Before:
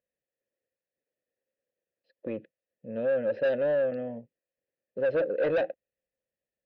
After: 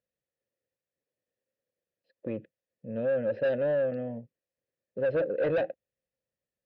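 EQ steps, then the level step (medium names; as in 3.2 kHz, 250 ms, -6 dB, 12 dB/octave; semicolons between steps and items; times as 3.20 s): distance through air 53 m; peaking EQ 110 Hz +7.5 dB 1.7 oct; -1.5 dB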